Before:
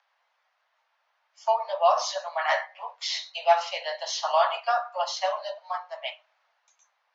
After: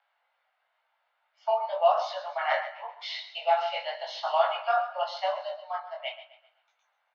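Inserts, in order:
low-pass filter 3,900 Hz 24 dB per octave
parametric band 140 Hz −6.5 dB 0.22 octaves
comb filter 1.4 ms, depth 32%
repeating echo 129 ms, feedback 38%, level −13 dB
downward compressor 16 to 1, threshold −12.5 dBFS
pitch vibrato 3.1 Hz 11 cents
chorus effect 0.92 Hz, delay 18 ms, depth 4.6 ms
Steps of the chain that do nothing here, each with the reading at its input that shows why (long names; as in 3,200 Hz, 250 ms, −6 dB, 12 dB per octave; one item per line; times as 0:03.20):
parametric band 140 Hz: nothing at its input below 450 Hz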